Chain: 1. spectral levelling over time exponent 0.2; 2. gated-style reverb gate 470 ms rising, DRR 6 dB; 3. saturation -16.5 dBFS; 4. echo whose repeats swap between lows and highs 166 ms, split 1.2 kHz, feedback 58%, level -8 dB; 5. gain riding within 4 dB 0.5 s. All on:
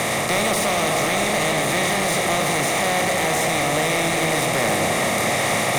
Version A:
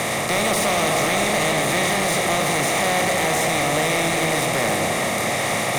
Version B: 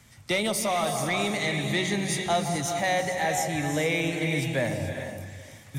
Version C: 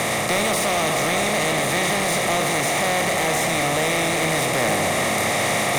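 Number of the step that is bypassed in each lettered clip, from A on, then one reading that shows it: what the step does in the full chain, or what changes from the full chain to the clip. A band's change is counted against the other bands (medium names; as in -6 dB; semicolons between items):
5, momentary loudness spread change +2 LU; 1, 125 Hz band +5.5 dB; 4, crest factor change -2.5 dB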